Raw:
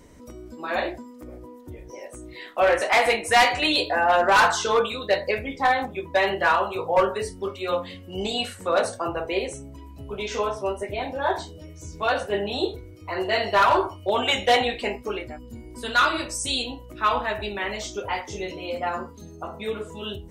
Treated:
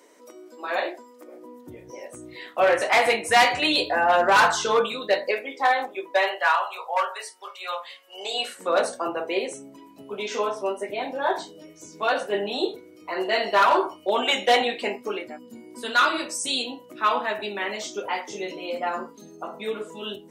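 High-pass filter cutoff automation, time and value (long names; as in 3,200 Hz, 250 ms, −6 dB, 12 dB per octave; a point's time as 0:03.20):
high-pass filter 24 dB per octave
0:01.30 350 Hz
0:01.78 100 Hz
0:04.65 100 Hz
0:05.44 330 Hz
0:06.06 330 Hz
0:06.52 720 Hz
0:08.07 720 Hz
0:08.69 200 Hz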